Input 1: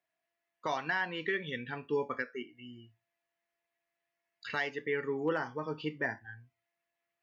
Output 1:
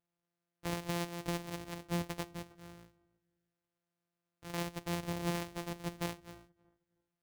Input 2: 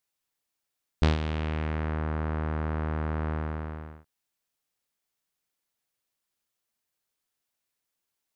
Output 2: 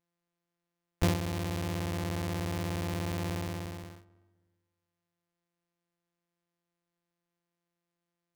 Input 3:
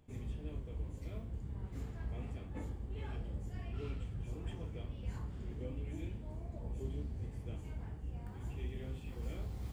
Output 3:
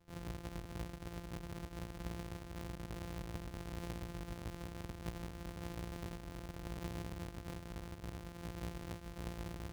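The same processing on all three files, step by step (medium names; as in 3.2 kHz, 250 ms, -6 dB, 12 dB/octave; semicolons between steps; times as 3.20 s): sorted samples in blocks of 256 samples; filtered feedback delay 316 ms, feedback 27%, low-pass 1.2 kHz, level -21.5 dB; dynamic bell 1.4 kHz, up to -5 dB, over -53 dBFS, Q 3.5; trim -3.5 dB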